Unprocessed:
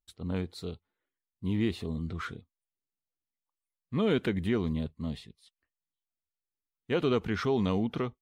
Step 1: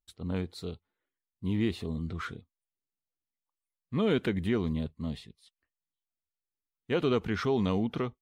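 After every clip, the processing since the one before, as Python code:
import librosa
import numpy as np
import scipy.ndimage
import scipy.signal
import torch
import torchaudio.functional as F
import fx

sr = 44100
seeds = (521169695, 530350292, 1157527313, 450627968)

y = x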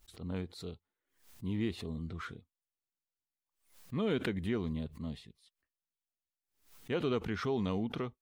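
y = fx.pre_swell(x, sr, db_per_s=130.0)
y = y * librosa.db_to_amplitude(-5.5)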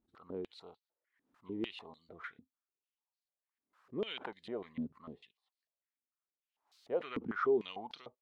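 y = fx.peak_eq(x, sr, hz=920.0, db=4.5, octaves=1.5)
y = fx.filter_held_bandpass(y, sr, hz=6.7, low_hz=260.0, high_hz=4300.0)
y = y * librosa.db_to_amplitude(5.0)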